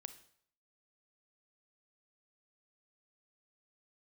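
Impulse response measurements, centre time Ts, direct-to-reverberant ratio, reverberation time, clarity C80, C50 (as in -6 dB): 7 ms, 10.5 dB, 0.60 s, 16.0 dB, 12.5 dB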